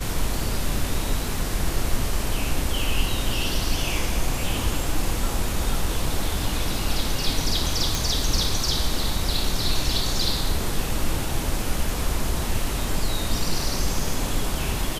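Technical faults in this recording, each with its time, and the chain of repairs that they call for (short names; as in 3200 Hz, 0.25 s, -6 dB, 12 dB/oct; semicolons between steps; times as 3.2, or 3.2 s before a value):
7.95 pop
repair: de-click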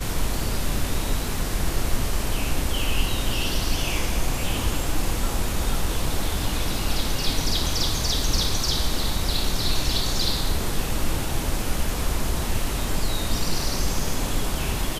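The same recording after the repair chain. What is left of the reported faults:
none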